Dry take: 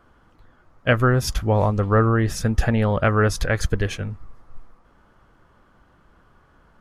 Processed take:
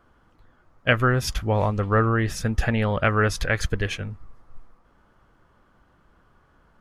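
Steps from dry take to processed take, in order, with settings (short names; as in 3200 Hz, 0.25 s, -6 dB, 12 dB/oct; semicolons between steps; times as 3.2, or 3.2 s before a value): dynamic EQ 2500 Hz, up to +7 dB, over -38 dBFS, Q 0.88; gain -3.5 dB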